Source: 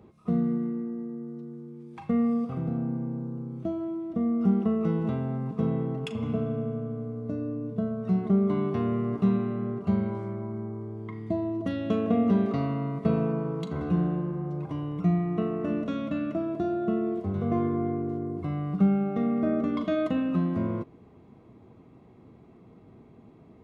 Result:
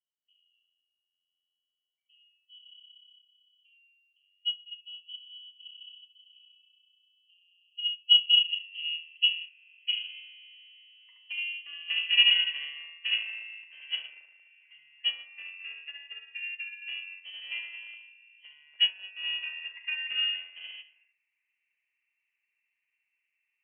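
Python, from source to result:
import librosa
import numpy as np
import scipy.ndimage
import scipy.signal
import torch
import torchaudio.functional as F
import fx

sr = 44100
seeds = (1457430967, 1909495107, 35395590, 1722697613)

p1 = fx.rattle_buzz(x, sr, strikes_db=-27.0, level_db=-32.0)
p2 = np.clip(p1, -10.0 ** (-20.5 / 20.0), 10.0 ** (-20.5 / 20.0))
p3 = p1 + (p2 * 10.0 ** (-10.5 / 20.0))
p4 = fx.filter_sweep_lowpass(p3, sr, from_hz=150.0, to_hz=1300.0, start_s=7.29, end_s=11.15, q=1.6)
p5 = p4 + fx.echo_single(p4, sr, ms=220, db=-11.0, dry=0)
p6 = fx.noise_reduce_blind(p5, sr, reduce_db=22)
p7 = fx.room_early_taps(p6, sr, ms=(54, 73), db=(-12.0, -4.5))
p8 = fx.freq_invert(p7, sr, carrier_hz=3100)
y = fx.upward_expand(p8, sr, threshold_db=-32.0, expansion=2.5)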